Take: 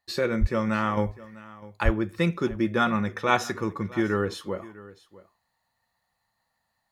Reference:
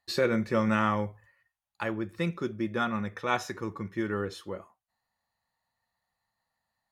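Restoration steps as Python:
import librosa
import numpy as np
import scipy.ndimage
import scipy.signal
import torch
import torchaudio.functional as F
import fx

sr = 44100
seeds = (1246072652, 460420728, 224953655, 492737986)

y = fx.highpass(x, sr, hz=140.0, slope=24, at=(0.4, 0.52), fade=0.02)
y = fx.highpass(y, sr, hz=140.0, slope=24, at=(1.84, 1.96), fade=0.02)
y = fx.fix_echo_inverse(y, sr, delay_ms=651, level_db=-19.5)
y = fx.gain(y, sr, db=fx.steps((0.0, 0.0), (0.97, -6.0)))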